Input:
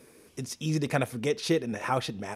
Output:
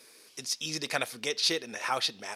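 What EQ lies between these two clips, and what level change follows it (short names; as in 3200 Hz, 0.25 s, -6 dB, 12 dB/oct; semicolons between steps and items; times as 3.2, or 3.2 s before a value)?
HPF 1300 Hz 6 dB/oct; bell 4500 Hz +9 dB 0.76 oct; +2.5 dB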